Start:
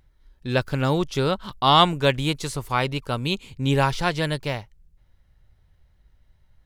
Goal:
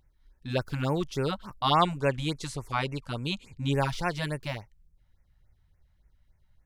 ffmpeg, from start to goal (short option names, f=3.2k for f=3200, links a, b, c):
-filter_complex "[0:a]asettb=1/sr,asplit=3[a][b][c];[a]atrim=end=1.774[d];[b]atrim=start=1.77:end=3.75,asetpts=PTS-STARTPTS,afade=t=in:d=0.004:c=qsin,afade=t=out:st=1.976:d=0.004:c=qsin,lowpass=10k[e];[c]atrim=start=3.746[f];[d][e]acrossfade=d=0.004:c1=hsin:c2=qsin[g];[g][f]acrossfade=d=0.004:c1=qsin:c2=hsin,afftfilt=real='re*(1-between(b*sr/1024,350*pow(4000/350,0.5+0.5*sin(2*PI*3.5*pts/sr))/1.41,350*pow(4000/350,0.5+0.5*sin(2*PI*3.5*pts/sr))*1.41))':imag='im*(1-between(b*sr/1024,350*pow(4000/350,0.5+0.5*sin(2*PI*3.5*pts/sr))/1.41,350*pow(4000/350,0.5+0.5*sin(2*PI*3.5*pts/sr))*1.41))':win_size=1024:overlap=0.75,volume=-6dB"